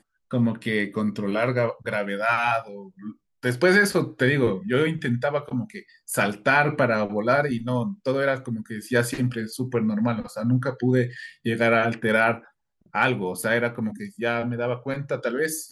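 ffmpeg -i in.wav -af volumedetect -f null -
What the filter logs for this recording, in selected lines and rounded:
mean_volume: -24.3 dB
max_volume: -5.4 dB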